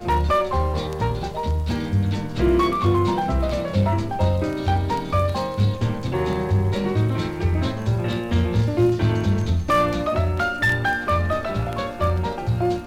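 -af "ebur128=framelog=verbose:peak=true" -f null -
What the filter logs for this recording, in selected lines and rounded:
Integrated loudness:
  I:         -22.1 LUFS
  Threshold: -32.1 LUFS
Loudness range:
  LRA:         1.7 LU
  Threshold: -42.0 LUFS
  LRA low:   -22.8 LUFS
  LRA high:  -21.0 LUFS
True peak:
  Peak:       -7.6 dBFS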